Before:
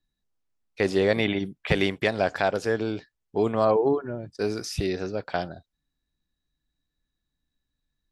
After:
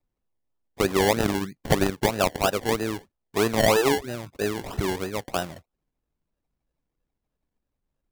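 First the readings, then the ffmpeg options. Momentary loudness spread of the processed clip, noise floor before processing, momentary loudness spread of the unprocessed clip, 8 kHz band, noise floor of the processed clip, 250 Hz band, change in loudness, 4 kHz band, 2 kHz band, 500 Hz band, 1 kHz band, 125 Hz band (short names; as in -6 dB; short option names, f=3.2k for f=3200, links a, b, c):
11 LU, -83 dBFS, 10 LU, +11.0 dB, -83 dBFS, +1.0 dB, +1.0 dB, +4.0 dB, +0.5 dB, 0.0 dB, +3.5 dB, +2.0 dB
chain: -af "acrusher=samples=28:mix=1:aa=0.000001:lfo=1:lforange=16.8:lforate=3.1,aeval=exprs='0.398*(cos(1*acos(clip(val(0)/0.398,-1,1)))-cos(1*PI/2))+0.0112*(cos(7*acos(clip(val(0)/0.398,-1,1)))-cos(7*PI/2))':c=same,volume=1.5dB"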